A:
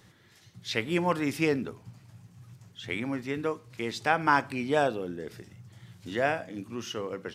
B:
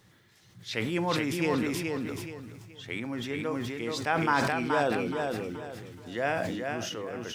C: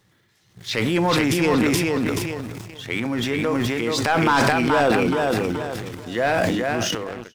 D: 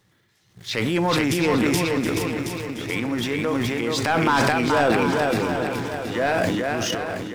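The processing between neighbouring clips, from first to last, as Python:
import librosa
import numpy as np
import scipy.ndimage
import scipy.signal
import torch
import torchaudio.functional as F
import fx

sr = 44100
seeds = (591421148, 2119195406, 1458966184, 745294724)

y1 = fx.quant_dither(x, sr, seeds[0], bits=12, dither='none')
y1 = fx.echo_feedback(y1, sr, ms=425, feedback_pct=29, wet_db=-4.5)
y1 = fx.sustainer(y1, sr, db_per_s=24.0)
y1 = y1 * 10.0 ** (-3.5 / 20.0)
y2 = fx.fade_out_tail(y1, sr, length_s=0.59)
y2 = fx.leveller(y2, sr, passes=2)
y2 = fx.transient(y2, sr, attack_db=0, sustain_db=12)
y2 = y2 * 10.0 ** (2.0 / 20.0)
y3 = fx.echo_feedback(y2, sr, ms=723, feedback_pct=40, wet_db=-8.5)
y3 = y3 * 10.0 ** (-1.5 / 20.0)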